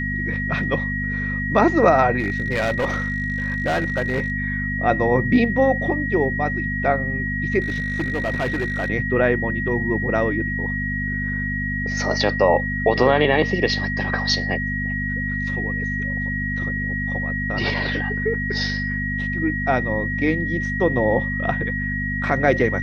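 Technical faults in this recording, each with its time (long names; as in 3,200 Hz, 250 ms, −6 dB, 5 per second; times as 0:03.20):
mains hum 50 Hz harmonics 5 −27 dBFS
whistle 1,900 Hz −25 dBFS
0:02.19–0:04.32: clipping −17 dBFS
0:07.60–0:08.90: clipping −18.5 dBFS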